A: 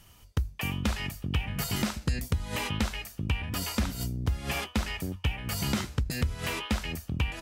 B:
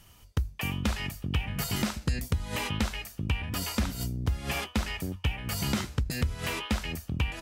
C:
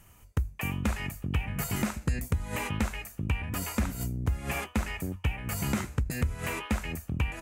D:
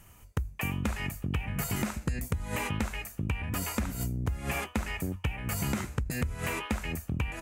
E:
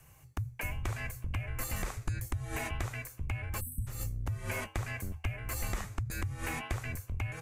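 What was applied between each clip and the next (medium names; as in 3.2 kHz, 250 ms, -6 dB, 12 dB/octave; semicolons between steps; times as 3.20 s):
no audible change
high-order bell 4.1 kHz -9 dB 1.1 oct
compression, threshold -28 dBFS, peak gain reduction 6 dB; trim +1.5 dB
spectral selection erased 3.61–3.87 s, 440–8000 Hz; frequency shift -170 Hz; trim -3.5 dB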